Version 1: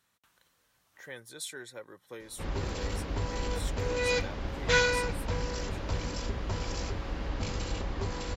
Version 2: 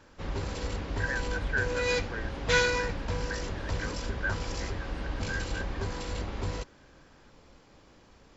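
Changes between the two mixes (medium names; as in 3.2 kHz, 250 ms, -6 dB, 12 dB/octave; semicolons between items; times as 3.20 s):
speech: add resonant low-pass 1.6 kHz, resonance Q 11; background: entry -2.20 s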